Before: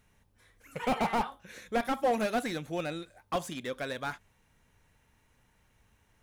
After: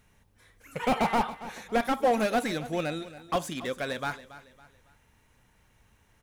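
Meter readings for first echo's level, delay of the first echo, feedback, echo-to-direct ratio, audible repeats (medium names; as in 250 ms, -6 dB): -16.0 dB, 278 ms, 37%, -15.5 dB, 3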